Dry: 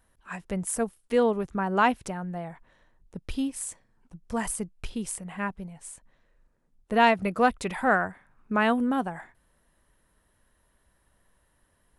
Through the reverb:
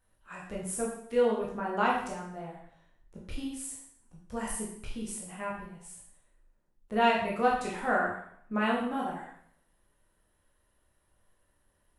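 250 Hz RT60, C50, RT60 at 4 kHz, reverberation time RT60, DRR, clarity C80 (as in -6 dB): 0.60 s, 3.5 dB, 0.60 s, 0.65 s, -4.0 dB, 6.5 dB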